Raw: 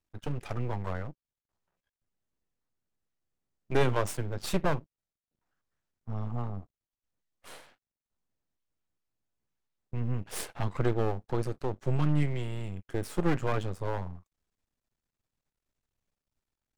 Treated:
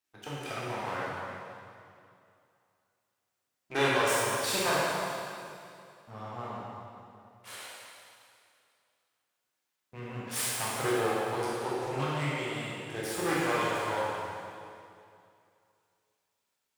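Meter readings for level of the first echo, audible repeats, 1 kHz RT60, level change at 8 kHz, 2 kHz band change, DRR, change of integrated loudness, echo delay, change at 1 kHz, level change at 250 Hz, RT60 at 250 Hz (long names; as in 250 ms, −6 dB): no echo audible, no echo audible, 2.5 s, +9.5 dB, +8.5 dB, −7.5 dB, +1.0 dB, no echo audible, +6.0 dB, −2.0 dB, 2.5 s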